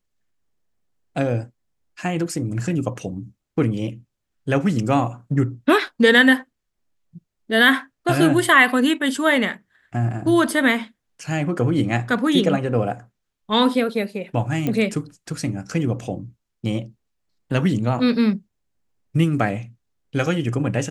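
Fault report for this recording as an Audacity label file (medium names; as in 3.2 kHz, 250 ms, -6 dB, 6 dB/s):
14.670000	14.670000	pop -11 dBFS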